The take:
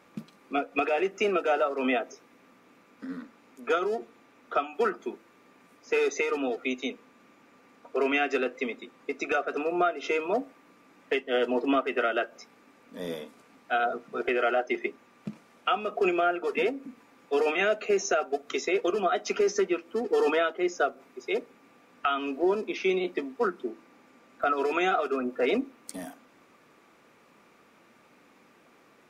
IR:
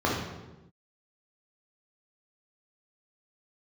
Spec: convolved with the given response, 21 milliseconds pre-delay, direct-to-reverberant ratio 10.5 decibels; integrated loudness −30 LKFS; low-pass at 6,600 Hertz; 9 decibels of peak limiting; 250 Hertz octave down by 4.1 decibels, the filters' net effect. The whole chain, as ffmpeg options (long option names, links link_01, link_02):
-filter_complex "[0:a]lowpass=6600,equalizer=frequency=250:width_type=o:gain=-6,alimiter=limit=-21.5dB:level=0:latency=1,asplit=2[link_01][link_02];[1:a]atrim=start_sample=2205,adelay=21[link_03];[link_02][link_03]afir=irnorm=-1:irlink=0,volume=-25dB[link_04];[link_01][link_04]amix=inputs=2:normalize=0,volume=2dB"